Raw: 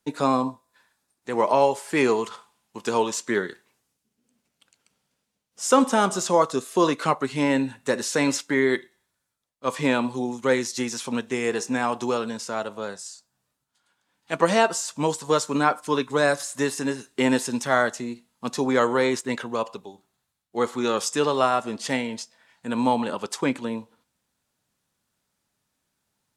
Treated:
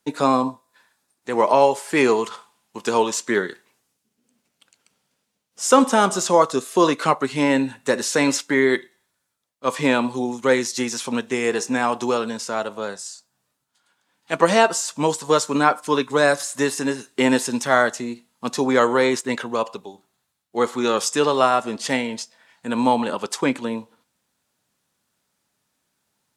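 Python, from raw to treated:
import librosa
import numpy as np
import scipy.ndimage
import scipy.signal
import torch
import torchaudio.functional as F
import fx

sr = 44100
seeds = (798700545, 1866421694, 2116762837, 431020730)

y = fx.low_shelf(x, sr, hz=86.0, db=-10.5)
y = y * 10.0 ** (4.0 / 20.0)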